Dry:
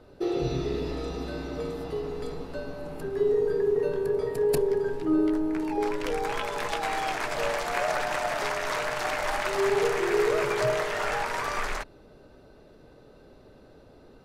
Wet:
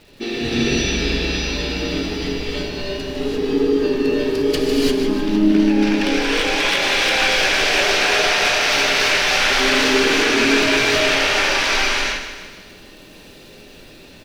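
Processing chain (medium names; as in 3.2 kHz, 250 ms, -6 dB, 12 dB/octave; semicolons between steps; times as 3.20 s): high-order bell 3.7 kHz +16 dB; flange 1.4 Hz, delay 9.3 ms, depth 9.3 ms, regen -67%; in parallel at -10 dB: wavefolder -23 dBFS; on the sum: crackle 230 per s -43 dBFS; saturation -18 dBFS, distortion -21 dB; harmony voices -7 st -2 dB; feedback delay 153 ms, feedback 52%, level -10 dB; gated-style reverb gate 370 ms rising, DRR -5 dB; trim +1 dB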